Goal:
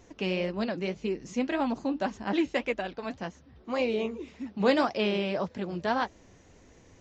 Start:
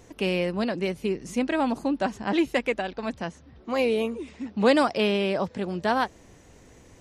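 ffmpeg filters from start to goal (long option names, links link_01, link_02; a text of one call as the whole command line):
ffmpeg -i in.wav -af "flanger=delay=3:depth=8.8:regen=-54:speed=1.8:shape=sinusoidal,aresample=16000,aresample=44100" out.wav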